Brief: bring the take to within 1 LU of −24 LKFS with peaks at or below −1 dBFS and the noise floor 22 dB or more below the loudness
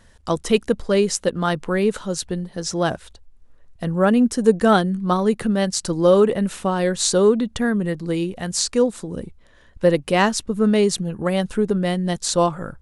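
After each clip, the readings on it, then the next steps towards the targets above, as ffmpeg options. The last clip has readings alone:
integrated loudness −20.0 LKFS; sample peak −2.0 dBFS; target loudness −24.0 LKFS
→ -af "volume=-4dB"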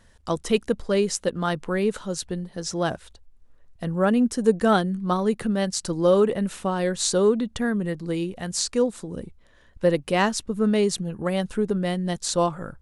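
integrated loudness −24.0 LKFS; sample peak −6.0 dBFS; background noise floor −54 dBFS

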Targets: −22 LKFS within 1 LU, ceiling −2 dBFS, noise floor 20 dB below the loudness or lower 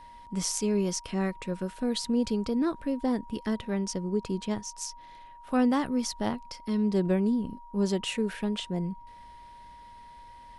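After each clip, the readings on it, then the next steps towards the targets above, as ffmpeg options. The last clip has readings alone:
interfering tone 950 Hz; level of the tone −47 dBFS; integrated loudness −30.0 LKFS; sample peak −12.5 dBFS; target loudness −22.0 LKFS
→ -af "bandreject=frequency=950:width=30"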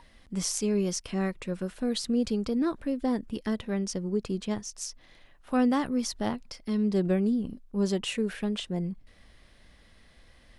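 interfering tone none found; integrated loudness −30.0 LKFS; sample peak −12.5 dBFS; target loudness −22.0 LKFS
→ -af "volume=8dB"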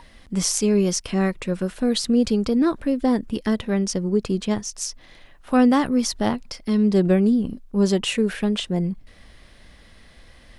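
integrated loudness −22.0 LKFS; sample peak −4.5 dBFS; background noise floor −50 dBFS

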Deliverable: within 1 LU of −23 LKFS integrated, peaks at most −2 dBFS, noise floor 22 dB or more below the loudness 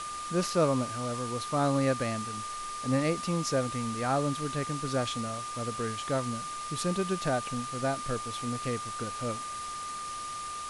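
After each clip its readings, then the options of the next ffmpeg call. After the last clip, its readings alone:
interfering tone 1,200 Hz; level of the tone −36 dBFS; background noise floor −38 dBFS; target noise floor −54 dBFS; integrated loudness −31.5 LKFS; sample peak −14.5 dBFS; target loudness −23.0 LKFS
→ -af "bandreject=frequency=1200:width=30"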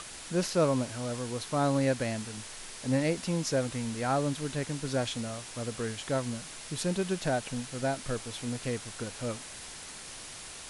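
interfering tone none found; background noise floor −45 dBFS; target noise floor −55 dBFS
→ -af "afftdn=noise_reduction=10:noise_floor=-45"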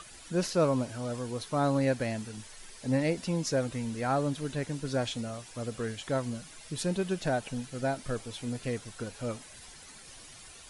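background noise floor −50 dBFS; target noise floor −55 dBFS
→ -af "afftdn=noise_reduction=6:noise_floor=-50"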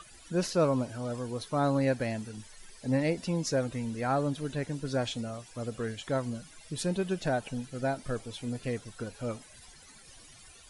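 background noise floor −54 dBFS; target noise floor −55 dBFS
→ -af "afftdn=noise_reduction=6:noise_floor=-54"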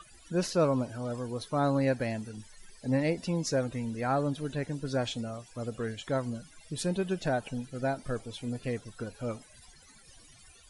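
background noise floor −57 dBFS; integrated loudness −32.5 LKFS; sample peak −15.5 dBFS; target loudness −23.0 LKFS
→ -af "volume=9.5dB"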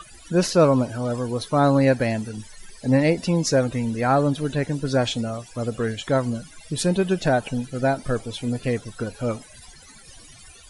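integrated loudness −23.0 LKFS; sample peak −6.0 dBFS; background noise floor −47 dBFS

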